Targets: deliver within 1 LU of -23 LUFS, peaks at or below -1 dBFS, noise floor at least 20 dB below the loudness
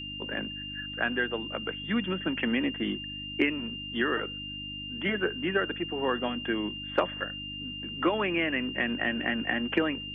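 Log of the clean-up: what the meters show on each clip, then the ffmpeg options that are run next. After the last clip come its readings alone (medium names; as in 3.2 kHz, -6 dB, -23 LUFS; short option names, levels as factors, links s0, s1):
hum 50 Hz; highest harmonic 300 Hz; hum level -42 dBFS; steady tone 2.8 kHz; tone level -37 dBFS; loudness -30.0 LUFS; peak level -11.5 dBFS; loudness target -23.0 LUFS
-> -af "bandreject=f=50:t=h:w=4,bandreject=f=100:t=h:w=4,bandreject=f=150:t=h:w=4,bandreject=f=200:t=h:w=4,bandreject=f=250:t=h:w=4,bandreject=f=300:t=h:w=4"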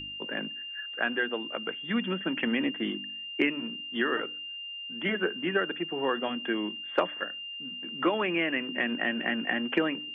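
hum not found; steady tone 2.8 kHz; tone level -37 dBFS
-> -af "bandreject=f=2800:w=30"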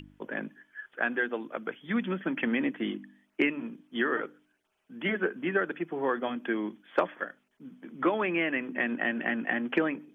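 steady tone not found; loudness -31.0 LUFS; peak level -12.0 dBFS; loudness target -23.0 LUFS
-> -af "volume=2.51"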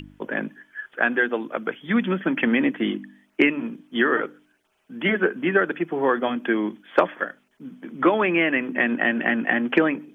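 loudness -23.0 LUFS; peak level -4.0 dBFS; noise floor -66 dBFS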